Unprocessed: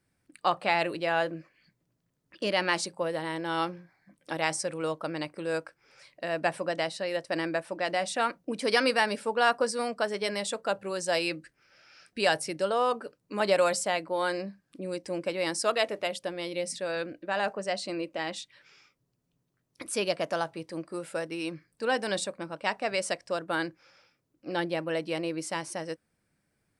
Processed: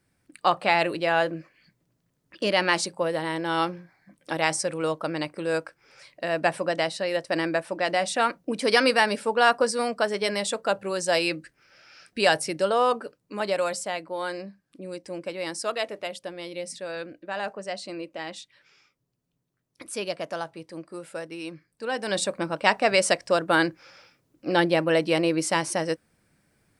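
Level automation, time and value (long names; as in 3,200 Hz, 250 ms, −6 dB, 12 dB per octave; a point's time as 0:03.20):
0:12.93 +4.5 dB
0:13.50 −2 dB
0:21.92 −2 dB
0:22.35 +9 dB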